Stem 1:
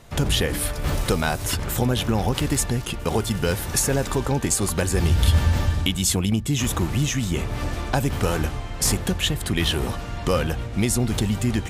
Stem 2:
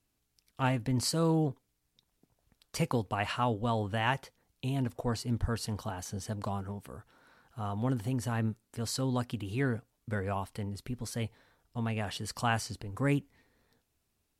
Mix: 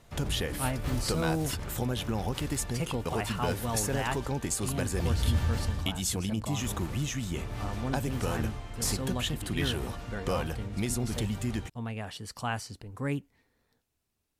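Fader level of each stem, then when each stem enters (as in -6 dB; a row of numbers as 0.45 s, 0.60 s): -9.5 dB, -3.0 dB; 0.00 s, 0.00 s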